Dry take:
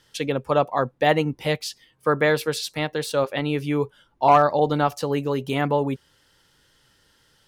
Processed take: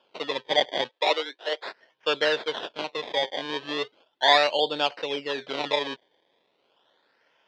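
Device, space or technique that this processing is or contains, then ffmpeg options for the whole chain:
circuit-bent sampling toy: -filter_complex "[0:a]acrusher=samples=22:mix=1:aa=0.000001:lfo=1:lforange=22:lforate=0.37,highpass=550,equalizer=frequency=790:width_type=q:width=4:gain=-4,equalizer=frequency=1200:width_type=q:width=4:gain=-9,equalizer=frequency=2200:width_type=q:width=4:gain=-4,equalizer=frequency=3400:width_type=q:width=4:gain=8,lowpass=frequency=4300:width=0.5412,lowpass=frequency=4300:width=1.3066,asettb=1/sr,asplit=3[link_01][link_02][link_03];[link_01]atrim=end=0.894[link_04];[link_02]atrim=start=0.89:end=1.66,asetpts=PTS-STARTPTS,afade=type=in:duration=0.004:curve=qsin,afade=type=out:start_time=0.766:duration=0.004:curve=qsin,highpass=frequency=370:width=0.5412,highpass=frequency=370:width=1.3066[link_05];[link_03]atrim=start=1.656[link_06];[link_04][link_05]acrossfade=duration=0.004:curve1=hsin:curve2=qsin[link_07];[link_07][link_06]acrossfade=duration=0.004:curve1=qsin:curve2=hsin"

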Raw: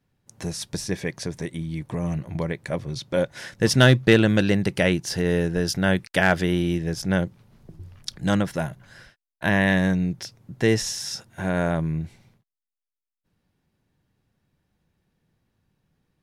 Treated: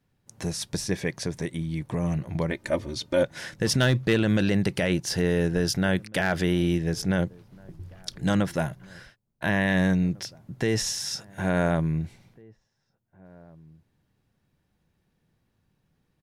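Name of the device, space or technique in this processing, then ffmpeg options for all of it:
clipper into limiter: -filter_complex "[0:a]asoftclip=type=hard:threshold=-8dB,alimiter=limit=-14.5dB:level=0:latency=1:release=32,asettb=1/sr,asplit=3[link_01][link_02][link_03];[link_01]atrim=end=2.504[link_04];[link_02]atrim=start=2.5:end=3.23,asetpts=PTS-STARTPTS,afade=type=in:duration=0.004:curve=qsin,afade=type=out:start_time=0.726:duration=0.004:curve=qsin,aecho=1:1:3.3:0.76,atrim=end_sample=32193[link_05];[link_03]atrim=start=3.226[link_06];[link_04][link_05]acrossfade=duration=0.004:curve1=hsin:curve2=qsin[link_07];[link_07][link_06]acrossfade=duration=0.004:curve1=qsin:curve2=hsin,asplit=2[link_08][link_09];[link_09]adelay=1749,volume=-25dB,highshelf=frequency=4000:gain=-39.4[link_10];[link_08][link_10]amix=inputs=2:normalize=0"

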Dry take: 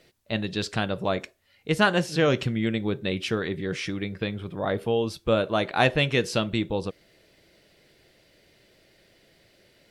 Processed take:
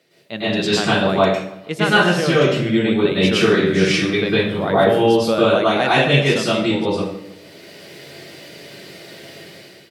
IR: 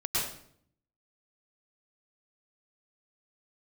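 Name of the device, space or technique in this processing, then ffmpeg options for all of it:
far laptop microphone: -filter_complex "[0:a]highpass=140[link_01];[1:a]atrim=start_sample=2205[link_02];[link_01][link_02]afir=irnorm=-1:irlink=0,highpass=100,dynaudnorm=framelen=240:gausssize=5:maxgain=15dB,asplit=2[link_03][link_04];[link_04]adelay=151,lowpass=frequency=3600:poles=1,volume=-18.5dB,asplit=2[link_05][link_06];[link_06]adelay=151,lowpass=frequency=3600:poles=1,volume=0.46,asplit=2[link_07][link_08];[link_08]adelay=151,lowpass=frequency=3600:poles=1,volume=0.46,asplit=2[link_09][link_10];[link_10]adelay=151,lowpass=frequency=3600:poles=1,volume=0.46[link_11];[link_03][link_05][link_07][link_09][link_11]amix=inputs=5:normalize=0,volume=-1dB"

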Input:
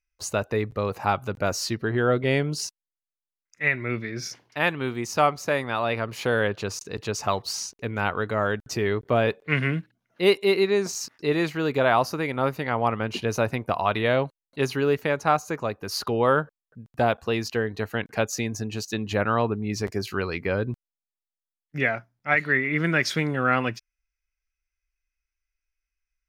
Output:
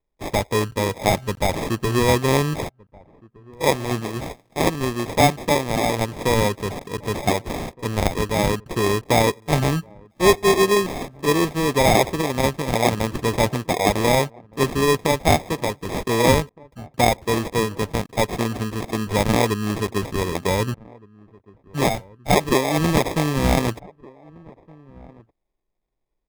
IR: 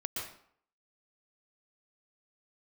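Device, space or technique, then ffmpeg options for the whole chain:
crushed at another speed: -filter_complex "[0:a]asetrate=35280,aresample=44100,acrusher=samples=38:mix=1:aa=0.000001,asetrate=55125,aresample=44100,asplit=2[link_01][link_02];[link_02]adelay=1516,volume=-24dB,highshelf=frequency=4000:gain=-34.1[link_03];[link_01][link_03]amix=inputs=2:normalize=0,volume=4.5dB"

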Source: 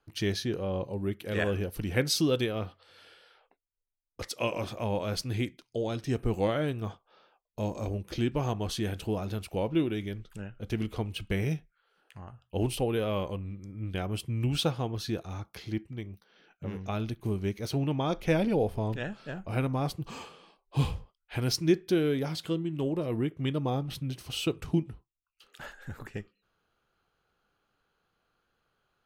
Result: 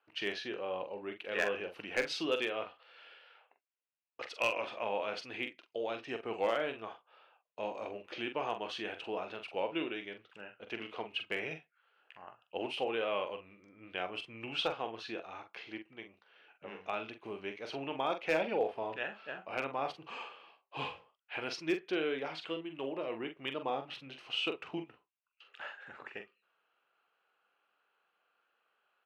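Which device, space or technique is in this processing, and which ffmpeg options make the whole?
megaphone: -filter_complex "[0:a]highpass=580,lowpass=2500,equalizer=frequency=2700:width_type=o:width=0.4:gain=8,asoftclip=type=hard:threshold=-22.5dB,asplit=2[link_01][link_02];[link_02]adelay=44,volume=-8dB[link_03];[link_01][link_03]amix=inputs=2:normalize=0"

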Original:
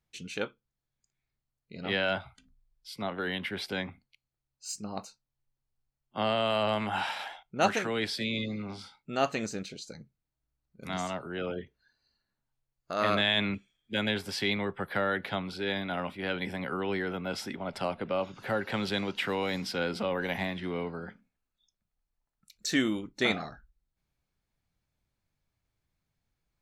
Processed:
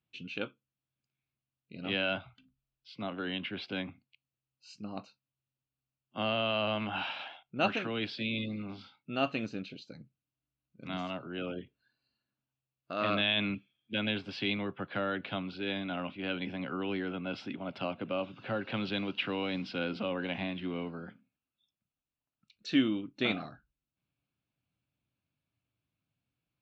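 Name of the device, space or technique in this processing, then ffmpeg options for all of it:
guitar cabinet: -af "highpass=100,equalizer=frequency=120:width_type=q:width=4:gain=5,equalizer=frequency=280:width_type=q:width=4:gain=6,equalizer=frequency=430:width_type=q:width=4:gain=-4,equalizer=frequency=870:width_type=q:width=4:gain=-5,equalizer=frequency=1900:width_type=q:width=4:gain=-8,equalizer=frequency=2700:width_type=q:width=4:gain=7,lowpass=frequency=4000:width=0.5412,lowpass=frequency=4000:width=1.3066,volume=-3dB"

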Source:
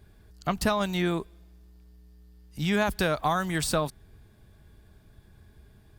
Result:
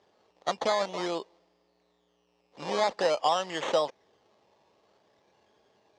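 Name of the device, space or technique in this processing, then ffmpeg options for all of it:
circuit-bent sampling toy: -af "acrusher=samples=13:mix=1:aa=0.000001:lfo=1:lforange=7.8:lforate=0.49,highpass=470,equalizer=frequency=530:width_type=q:width=4:gain=8,equalizer=frequency=840:width_type=q:width=4:gain=4,equalizer=frequency=1500:width_type=q:width=4:gain=-10,equalizer=frequency=2400:width_type=q:width=4:gain=-4,lowpass=frequency=6000:width=0.5412,lowpass=frequency=6000:width=1.3066"

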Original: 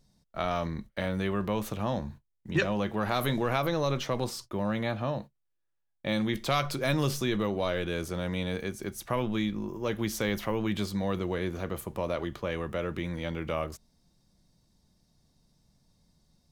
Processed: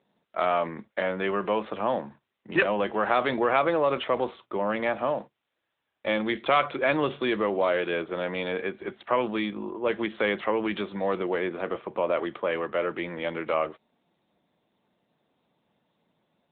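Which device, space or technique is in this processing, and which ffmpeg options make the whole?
telephone: -af "highpass=370,lowpass=3400,volume=7.5dB" -ar 8000 -c:a libopencore_amrnb -b:a 10200

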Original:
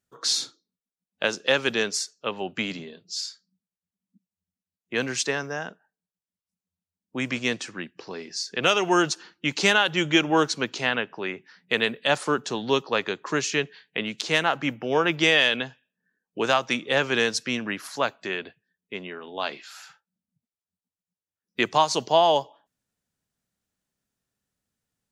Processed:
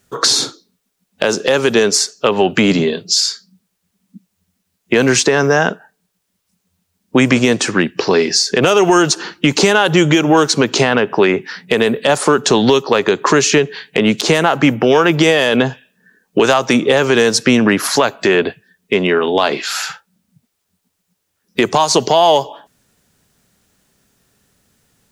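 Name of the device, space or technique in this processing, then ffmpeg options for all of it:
mastering chain: -filter_complex "[0:a]equalizer=frequency=410:width_type=o:width=0.21:gain=4,acrossover=split=1300|7200[link_01][link_02][link_03];[link_01]acompressor=threshold=-28dB:ratio=4[link_04];[link_02]acompressor=threshold=-38dB:ratio=4[link_05];[link_03]acompressor=threshold=-44dB:ratio=4[link_06];[link_04][link_05][link_06]amix=inputs=3:normalize=0,acompressor=threshold=-31dB:ratio=2.5,asoftclip=type=tanh:threshold=-20dB,alimiter=level_in=24.5dB:limit=-1dB:release=50:level=0:latency=1,volume=-1dB"

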